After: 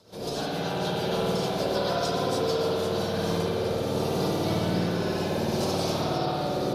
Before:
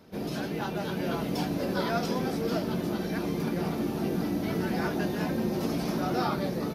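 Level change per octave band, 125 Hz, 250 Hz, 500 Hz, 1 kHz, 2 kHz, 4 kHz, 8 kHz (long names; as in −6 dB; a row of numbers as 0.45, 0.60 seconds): +3.0, −1.0, +5.5, +4.0, +0.5, +8.0, +6.5 decibels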